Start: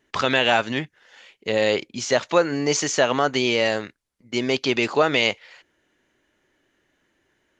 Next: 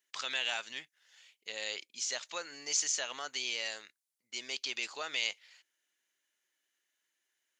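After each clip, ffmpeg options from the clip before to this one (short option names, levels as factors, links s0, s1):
-af "aderivative,volume=0.668"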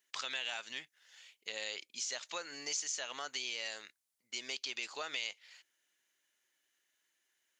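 -af "acompressor=threshold=0.00891:ratio=2.5,volume=1.33"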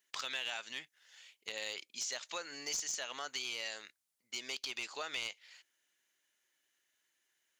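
-af "aeval=exprs='clip(val(0),-1,0.0266)':c=same"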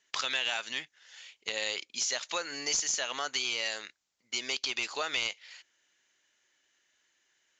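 -af "aresample=16000,aresample=44100,volume=2.51"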